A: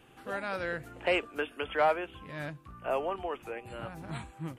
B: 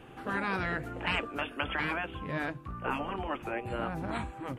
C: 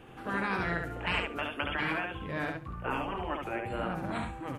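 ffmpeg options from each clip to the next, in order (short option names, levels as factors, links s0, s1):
-af "highshelf=f=3000:g=-11.5,afftfilt=real='re*lt(hypot(re,im),0.0708)':imag='im*lt(hypot(re,im),0.0708)':win_size=1024:overlap=0.75,volume=2.82"
-af "aecho=1:1:70|140|210:0.631|0.101|0.0162,volume=0.891"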